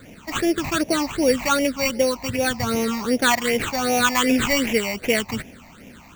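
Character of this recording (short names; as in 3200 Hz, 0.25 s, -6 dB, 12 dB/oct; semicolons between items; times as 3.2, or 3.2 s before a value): aliases and images of a low sample rate 5100 Hz, jitter 0%; phasing stages 8, 2.6 Hz, lowest notch 430–1300 Hz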